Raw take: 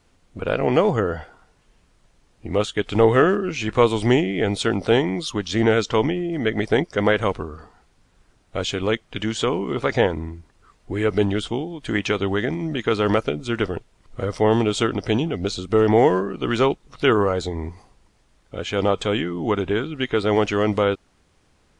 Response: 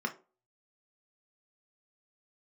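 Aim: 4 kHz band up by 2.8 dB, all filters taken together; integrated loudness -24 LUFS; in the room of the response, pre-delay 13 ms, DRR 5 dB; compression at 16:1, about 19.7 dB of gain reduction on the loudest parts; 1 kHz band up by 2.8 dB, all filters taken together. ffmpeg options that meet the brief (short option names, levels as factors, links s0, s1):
-filter_complex "[0:a]equalizer=f=1000:t=o:g=3.5,equalizer=f=4000:t=o:g=3.5,acompressor=threshold=0.0316:ratio=16,asplit=2[s0][s1];[1:a]atrim=start_sample=2205,adelay=13[s2];[s1][s2]afir=irnorm=-1:irlink=0,volume=0.316[s3];[s0][s3]amix=inputs=2:normalize=0,volume=3.16"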